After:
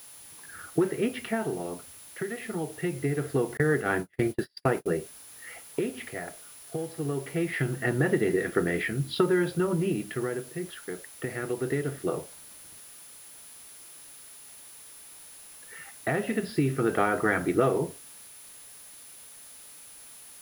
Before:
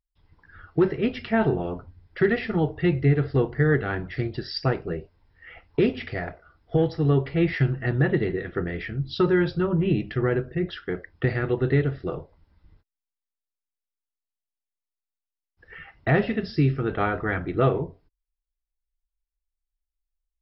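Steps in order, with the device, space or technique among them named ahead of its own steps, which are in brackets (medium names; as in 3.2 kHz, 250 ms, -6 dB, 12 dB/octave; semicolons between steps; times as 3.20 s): medium wave at night (band-pass 190–3500 Hz; compression 6:1, threshold -24 dBFS, peak gain reduction 9 dB; tremolo 0.23 Hz, depth 71%; whistle 10 kHz -53 dBFS; white noise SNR 21 dB); 3.57–4.86 s: gate -33 dBFS, range -38 dB; trim +5 dB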